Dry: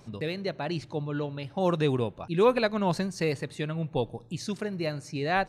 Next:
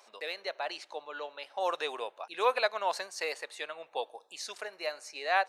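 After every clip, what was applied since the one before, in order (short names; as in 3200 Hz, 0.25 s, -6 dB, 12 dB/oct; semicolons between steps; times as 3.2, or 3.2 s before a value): HPF 590 Hz 24 dB/oct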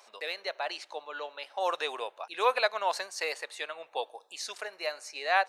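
low shelf 270 Hz -8.5 dB; gain +2.5 dB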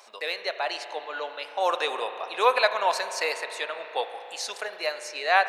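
spring tank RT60 3.5 s, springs 35 ms, chirp 65 ms, DRR 8.5 dB; gain +5 dB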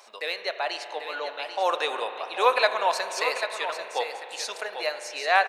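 echo 0.791 s -9 dB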